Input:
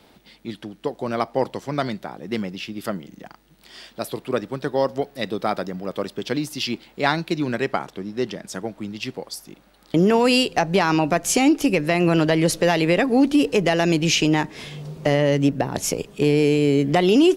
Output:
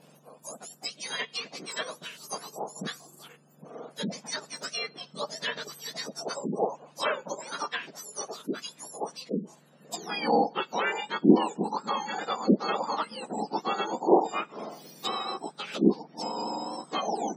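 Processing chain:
frequency axis turned over on the octave scale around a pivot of 1,500 Hz
treble cut that deepens with the level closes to 1,900 Hz, closed at −22.5 dBFS
gate on every frequency bin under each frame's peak −30 dB strong
level −2 dB

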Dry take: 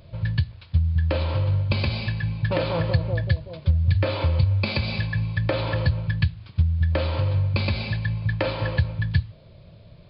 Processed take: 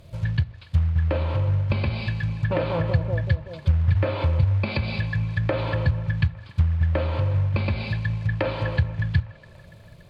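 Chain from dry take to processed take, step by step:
delay with a band-pass on its return 286 ms, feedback 68%, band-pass 1,300 Hz, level −20 dB
log-companded quantiser 6 bits
treble cut that deepens with the level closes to 2,300 Hz, closed at −19.5 dBFS

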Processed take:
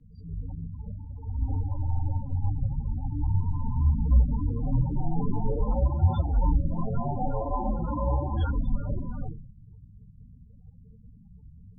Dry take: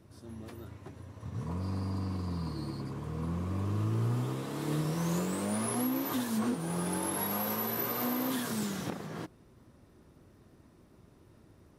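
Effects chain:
Chebyshev low-pass filter 5,900 Hz, order 8
rectangular room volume 370 cubic metres, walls furnished, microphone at 3.5 metres
spectral peaks only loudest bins 16
frequency shifter −180 Hz
level +3 dB
Ogg Vorbis 48 kbit/s 32,000 Hz

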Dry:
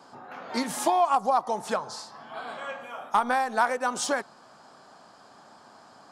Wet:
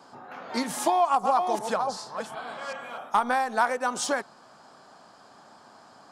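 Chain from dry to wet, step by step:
0:00.83–0:02.98: delay that plays each chunk backwards 380 ms, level −6 dB

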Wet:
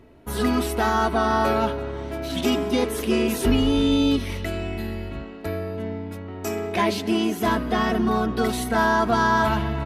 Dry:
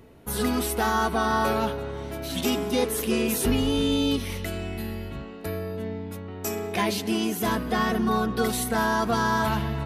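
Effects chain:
in parallel at −6.5 dB: dead-zone distortion −43.5 dBFS
on the sum: low-pass filter 3,800 Hz 6 dB per octave
comb filter 3.1 ms, depth 34%

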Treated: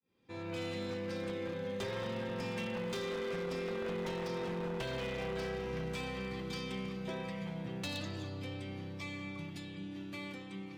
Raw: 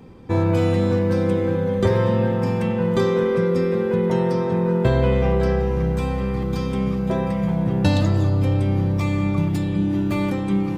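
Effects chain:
fade in at the beginning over 0.63 s
source passing by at 0:04.25, 5 m/s, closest 6.1 metres
meter weighting curve D
downward compressor 6 to 1, threshold −26 dBFS, peak gain reduction 10 dB
wave folding −24.5 dBFS
level −7.5 dB

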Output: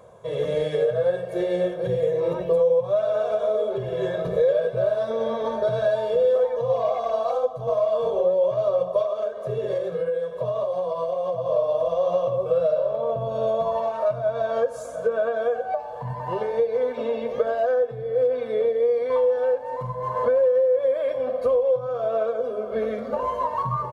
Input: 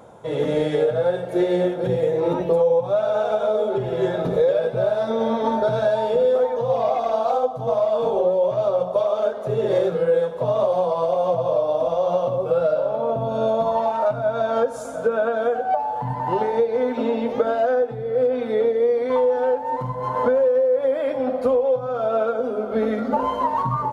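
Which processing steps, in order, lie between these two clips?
comb filter 1.8 ms, depth 71%
0:09.02–0:11.50: downward compressor, threshold −17 dBFS, peak gain reduction 7 dB
level −5.5 dB

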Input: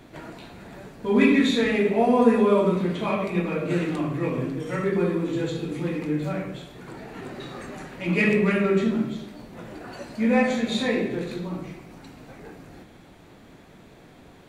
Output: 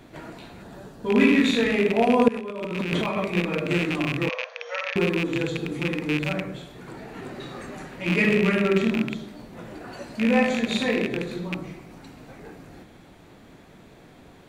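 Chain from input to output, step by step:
loose part that buzzes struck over −28 dBFS, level −16 dBFS
0:00.62–0:01.06: parametric band 2,200 Hz −10.5 dB 0.39 octaves
0:02.28–0:03.20: compressor whose output falls as the input rises −29 dBFS, ratio −1
0:04.29–0:04.96: linear-phase brick-wall band-pass 470–6,700 Hz

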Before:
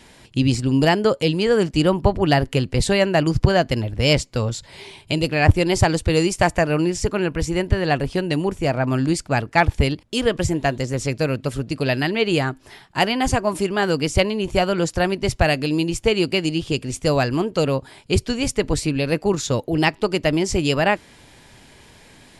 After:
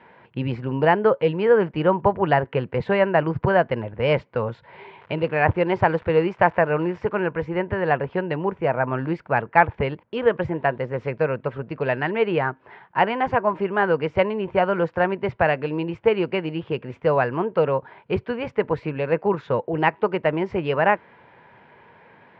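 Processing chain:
0:04.98–0:07.16: surface crackle 180 per second −26 dBFS
loudspeaker in its box 150–2,300 Hz, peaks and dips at 280 Hz −9 dB, 490 Hz +5 dB, 950 Hz +8 dB, 1,500 Hz +4 dB
level −2 dB

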